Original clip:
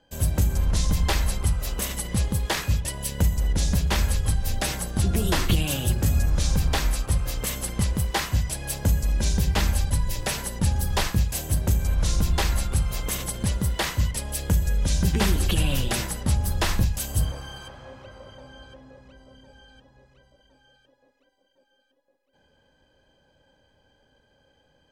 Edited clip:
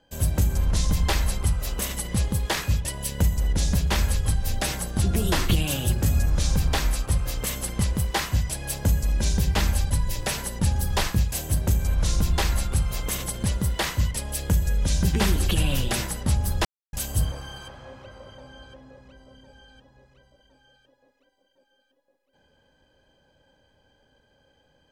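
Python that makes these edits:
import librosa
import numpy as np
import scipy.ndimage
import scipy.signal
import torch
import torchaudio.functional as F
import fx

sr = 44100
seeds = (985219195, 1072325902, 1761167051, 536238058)

y = fx.edit(x, sr, fx.silence(start_s=16.65, length_s=0.28), tone=tone)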